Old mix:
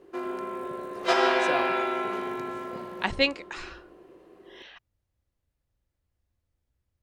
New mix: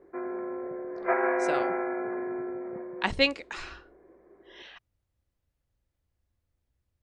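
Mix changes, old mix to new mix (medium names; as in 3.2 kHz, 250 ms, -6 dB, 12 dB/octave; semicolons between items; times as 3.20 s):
background: add rippled Chebyshev low-pass 2.3 kHz, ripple 3 dB; reverb: off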